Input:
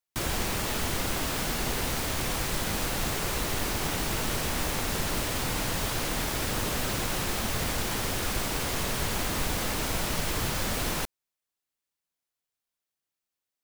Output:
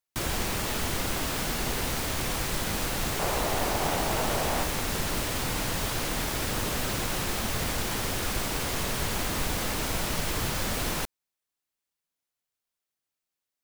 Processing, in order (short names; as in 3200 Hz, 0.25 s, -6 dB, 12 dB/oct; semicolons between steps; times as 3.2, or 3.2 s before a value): 3.19–4.64 bell 700 Hz +9 dB 1.2 oct